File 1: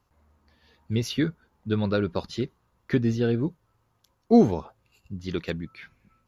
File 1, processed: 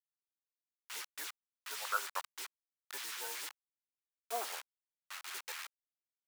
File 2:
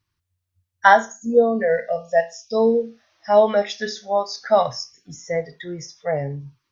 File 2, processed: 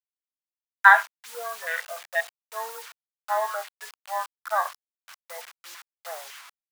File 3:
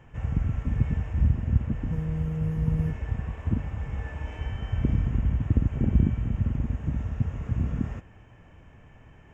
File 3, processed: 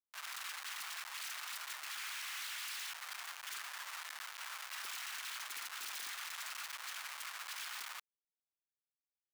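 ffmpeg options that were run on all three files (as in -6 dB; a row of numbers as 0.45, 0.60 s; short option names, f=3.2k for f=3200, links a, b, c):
-filter_complex "[0:a]acrossover=split=2700[a][b];[b]acompressor=threshold=-52dB:ratio=4:attack=1:release=60[c];[a][c]amix=inputs=2:normalize=0,afwtdn=0.0398,acrusher=bits=6:mix=0:aa=0.000001,highpass=f=1.1k:w=0.5412,highpass=f=1.1k:w=1.3066,volume=4dB"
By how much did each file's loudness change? -15.5, -4.0, -14.5 LU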